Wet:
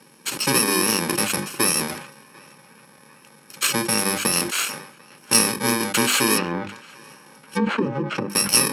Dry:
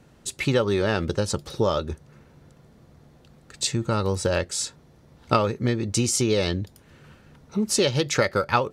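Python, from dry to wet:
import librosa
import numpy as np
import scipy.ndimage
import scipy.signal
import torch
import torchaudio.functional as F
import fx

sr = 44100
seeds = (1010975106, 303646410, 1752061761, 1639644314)

p1 = fx.bit_reversed(x, sr, seeds[0], block=64)
p2 = scipy.signal.sosfilt(scipy.signal.butter(4, 12000.0, 'lowpass', fs=sr, output='sos'), p1)
p3 = fx.env_lowpass_down(p2, sr, base_hz=530.0, full_db=-19.5, at=(6.37, 8.3))
p4 = scipy.signal.sosfilt(scipy.signal.butter(4, 180.0, 'highpass', fs=sr, output='sos'), p3)
p5 = fx.peak_eq(p4, sr, hz=1800.0, db=4.5, octaves=1.9)
p6 = 10.0 ** (-18.0 / 20.0) * np.tanh(p5 / 10.0 ** (-18.0 / 20.0))
p7 = p5 + (p6 * 10.0 ** (-7.0 / 20.0))
p8 = fx.hum_notches(p7, sr, base_hz=50, count=7)
p9 = p8 + fx.echo_banded(p8, sr, ms=745, feedback_pct=64, hz=1400.0, wet_db=-22.5, dry=0)
p10 = fx.sustainer(p9, sr, db_per_s=83.0)
y = p10 * 10.0 ** (2.5 / 20.0)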